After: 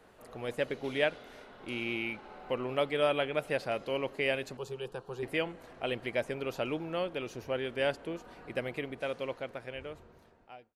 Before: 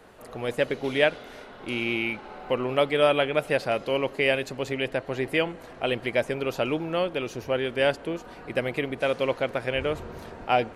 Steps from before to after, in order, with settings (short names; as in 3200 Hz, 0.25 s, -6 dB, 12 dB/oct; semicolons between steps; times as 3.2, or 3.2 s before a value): ending faded out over 2.28 s; 4.57–5.23 fixed phaser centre 410 Hz, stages 8; gain -7.5 dB